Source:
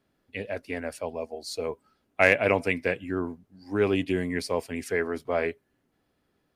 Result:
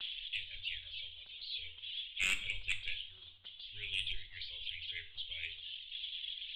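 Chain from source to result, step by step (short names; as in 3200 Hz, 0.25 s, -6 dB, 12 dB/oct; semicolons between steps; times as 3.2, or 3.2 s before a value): switching spikes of -21 dBFS; inverse Chebyshev band-stop 140–1400 Hz, stop band 70 dB; reverb removal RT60 1.9 s; expander -41 dBFS; steep low-pass 3400 Hz 96 dB/oct; low shelf 84 Hz -7.5 dB; sine folder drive 7 dB, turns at -42.5 dBFS; shoebox room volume 720 m³, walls furnished, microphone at 1.1 m; gain +17.5 dB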